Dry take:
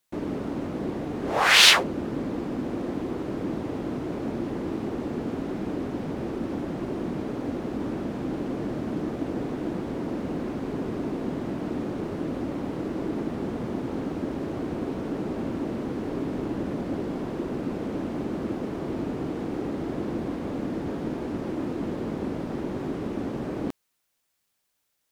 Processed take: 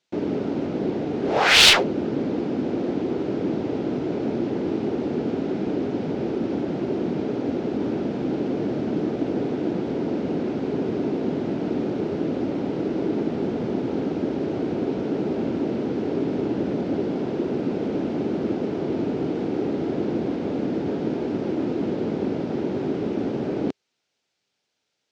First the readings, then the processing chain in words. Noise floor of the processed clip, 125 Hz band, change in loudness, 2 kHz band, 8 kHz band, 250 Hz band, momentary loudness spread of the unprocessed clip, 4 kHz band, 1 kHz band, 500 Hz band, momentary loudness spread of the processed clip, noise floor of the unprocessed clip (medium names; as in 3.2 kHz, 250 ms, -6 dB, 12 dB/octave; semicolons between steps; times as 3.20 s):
-78 dBFS, +3.0 dB, +4.0 dB, +1.5 dB, no reading, +5.0 dB, 1 LU, +2.5 dB, +1.5 dB, +6.5 dB, 1 LU, -76 dBFS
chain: cabinet simulation 110–5900 Hz, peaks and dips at 410 Hz +4 dB, 1.1 kHz -8 dB, 1.8 kHz -4 dB; one-sided clip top -17 dBFS; trim +4.5 dB